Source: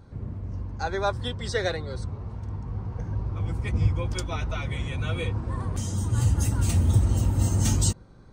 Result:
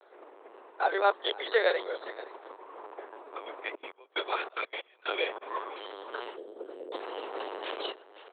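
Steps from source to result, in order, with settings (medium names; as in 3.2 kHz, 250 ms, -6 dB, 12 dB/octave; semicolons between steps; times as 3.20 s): 6.36–6.93 s: elliptic low-pass 580 Hz; delay 521 ms -18.5 dB; LPC vocoder at 8 kHz pitch kept; steep high-pass 390 Hz 48 dB/octave; 3.68–5.41 s: trance gate ".x.x...xxxx" 184 bpm -24 dB; trim +3 dB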